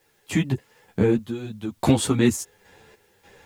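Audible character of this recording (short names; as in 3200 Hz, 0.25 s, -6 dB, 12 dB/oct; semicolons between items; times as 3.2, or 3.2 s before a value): random-step tremolo 3.4 Hz, depth 85%; a quantiser's noise floor 12-bit, dither triangular; a shimmering, thickened sound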